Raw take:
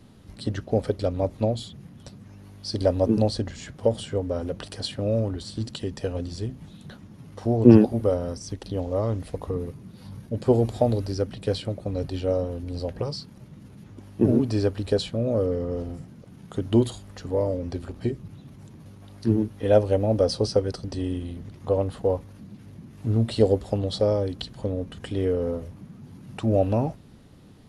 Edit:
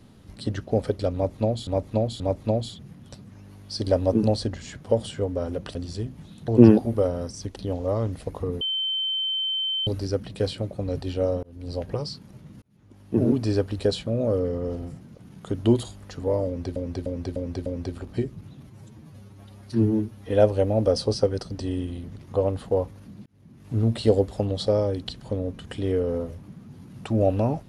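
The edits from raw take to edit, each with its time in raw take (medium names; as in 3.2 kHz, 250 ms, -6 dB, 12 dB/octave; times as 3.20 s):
1.14–1.67 s: loop, 3 plays
4.69–6.18 s: delete
6.91–7.55 s: delete
9.68–10.94 s: bleep 3.09 kHz -23.5 dBFS
12.50–12.82 s: fade in
13.69–14.40 s: fade in
17.53–17.83 s: loop, 5 plays
18.54–19.62 s: stretch 1.5×
22.59–23.09 s: fade in linear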